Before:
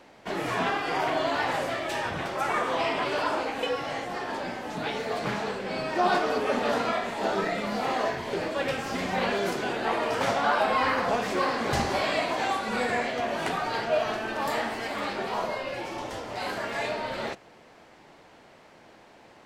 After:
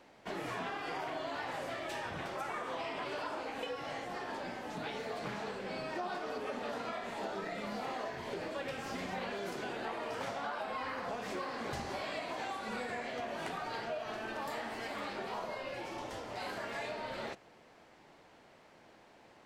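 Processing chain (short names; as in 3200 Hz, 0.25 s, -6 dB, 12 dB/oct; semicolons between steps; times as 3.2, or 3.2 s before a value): compressor, threshold -29 dBFS, peak gain reduction 9.5 dB; gain -7 dB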